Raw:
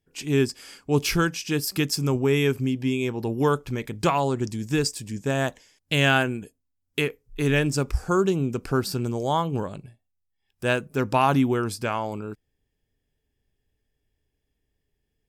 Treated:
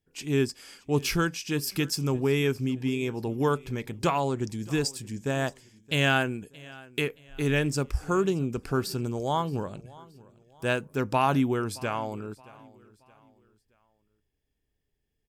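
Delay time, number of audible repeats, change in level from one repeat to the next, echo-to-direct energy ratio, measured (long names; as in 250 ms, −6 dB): 623 ms, 2, −8.0 dB, −21.5 dB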